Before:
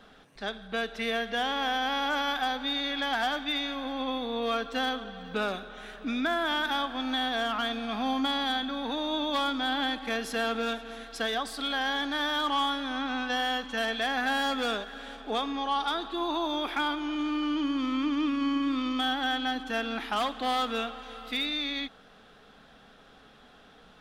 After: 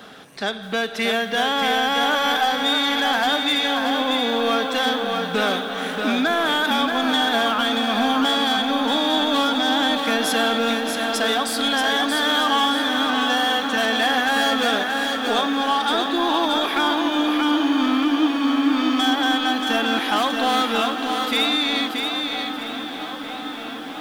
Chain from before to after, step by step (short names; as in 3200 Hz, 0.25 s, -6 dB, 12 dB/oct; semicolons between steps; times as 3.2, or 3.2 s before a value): HPF 120 Hz 12 dB/oct; high shelf 7500 Hz +8.5 dB; in parallel at 0 dB: compressor, threshold -35 dBFS, peak gain reduction 11 dB; on the sum: soft clip -20 dBFS, distortion -18 dB; dark delay 0.958 s, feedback 84%, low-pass 3800 Hz, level -14 dB; lo-fi delay 0.63 s, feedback 35%, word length 9-bit, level -4.5 dB; gain +6.5 dB